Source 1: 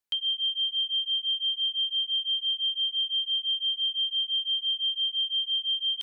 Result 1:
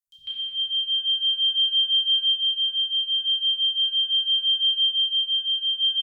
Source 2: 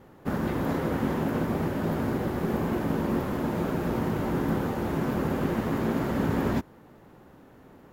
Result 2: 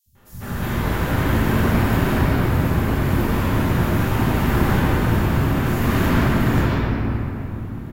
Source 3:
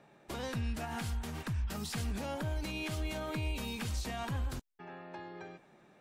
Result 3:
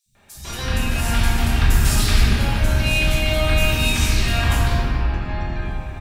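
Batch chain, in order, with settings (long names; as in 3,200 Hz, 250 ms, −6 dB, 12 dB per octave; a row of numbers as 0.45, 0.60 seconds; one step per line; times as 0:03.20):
sub-octave generator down 1 octave, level +1 dB
guitar amp tone stack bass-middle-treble 5-5-5
sample-and-hold tremolo 2.3 Hz
three-band delay without the direct sound highs, lows, mids 60/150 ms, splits 150/5,200 Hz
rectangular room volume 200 cubic metres, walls hard, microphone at 1.2 metres
loudness normalisation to −20 LKFS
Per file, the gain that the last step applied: +7.0, +17.0, +24.0 decibels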